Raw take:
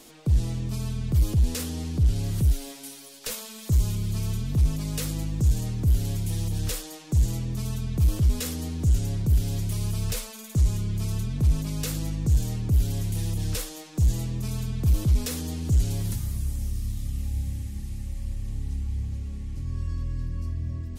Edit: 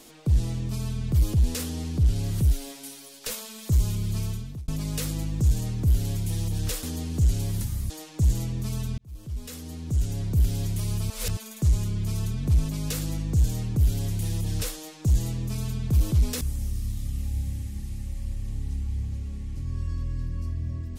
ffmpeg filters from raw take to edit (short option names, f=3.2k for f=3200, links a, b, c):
-filter_complex "[0:a]asplit=8[a][b][c][d][e][f][g][h];[a]atrim=end=4.68,asetpts=PTS-STARTPTS,afade=t=out:st=4.2:d=0.48[i];[b]atrim=start=4.68:end=6.832,asetpts=PTS-STARTPTS,afade=t=in:d=0.004:c=hsin[j];[c]atrim=start=15.338:end=16.412[k];[d]atrim=start=6.828:end=7.91,asetpts=PTS-STARTPTS,afade=t=out:st=1.078:d=0.004:c=hsin[l];[e]atrim=start=7.91:end=10.032,asetpts=PTS-STARTPTS,afade=t=in:d=1.47[m];[f]atrim=start=10.028:end=10.302,asetpts=PTS-STARTPTS,areverse[n];[g]atrim=start=10.298:end=15.342[o];[h]atrim=start=16.408[p];[i][j]concat=n=2:v=0:a=1[q];[q][k]acrossfade=d=0.004:c1=hsin:c2=hsin[r];[l][m]concat=n=2:v=0:a=1[s];[r][s]acrossfade=d=0.004:c1=hsin:c2=hsin[t];[t][n]acrossfade=d=0.004:c1=hsin:c2=hsin[u];[u][o]acrossfade=d=0.004:c1=hsin:c2=hsin[v];[v][p]acrossfade=d=0.004:c1=hsin:c2=hsin"